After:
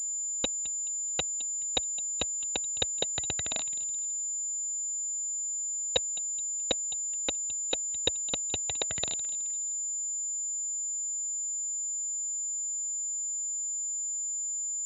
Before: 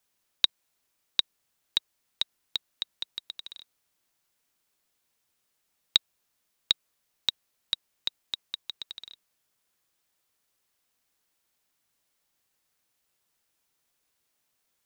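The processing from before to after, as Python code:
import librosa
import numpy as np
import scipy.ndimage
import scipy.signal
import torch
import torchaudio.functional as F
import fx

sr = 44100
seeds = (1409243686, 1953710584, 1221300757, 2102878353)

p1 = fx.law_mismatch(x, sr, coded='mu')
p2 = fx.fuzz(p1, sr, gain_db=35.0, gate_db=-39.0)
p3 = p2 + fx.echo_feedback(p2, sr, ms=213, feedback_pct=33, wet_db=-16.5, dry=0)
p4 = fx.phaser_stages(p3, sr, stages=6, low_hz=100.0, high_hz=2600.0, hz=1.9, feedback_pct=40)
p5 = scipy.signal.sosfilt(scipy.signal.butter(4, 67.0, 'highpass', fs=sr, output='sos'), p4)
p6 = fx.small_body(p5, sr, hz=(650.0, 2000.0), ring_ms=85, db=13)
p7 = fx.dmg_crackle(p6, sr, seeds[0], per_s=390.0, level_db=-59.0)
p8 = np.repeat(p7[::2], 2)[:len(p7)]
y = fx.pwm(p8, sr, carrier_hz=7100.0)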